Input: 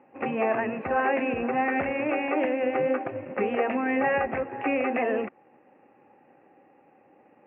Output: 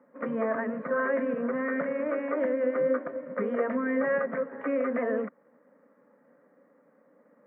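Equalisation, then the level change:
high-pass filter 140 Hz 24 dB per octave
phaser with its sweep stopped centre 530 Hz, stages 8
0.0 dB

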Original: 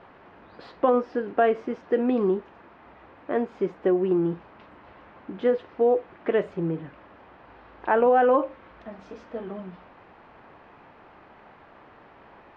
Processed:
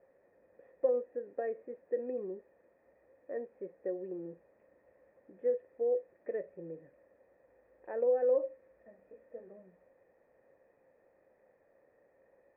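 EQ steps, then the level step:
formant resonators in series e
high-frequency loss of the air 260 metres
high-shelf EQ 2,600 Hz −9.5 dB
−3.5 dB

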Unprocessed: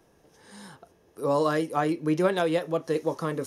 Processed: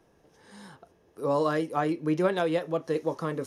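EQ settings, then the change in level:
high-shelf EQ 6,100 Hz −7 dB
−1.5 dB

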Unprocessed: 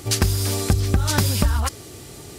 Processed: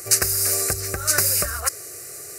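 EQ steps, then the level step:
high-pass filter 480 Hz 6 dB per octave
high-shelf EQ 4,300 Hz +8.5 dB
phaser with its sweep stopped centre 910 Hz, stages 6
+3.0 dB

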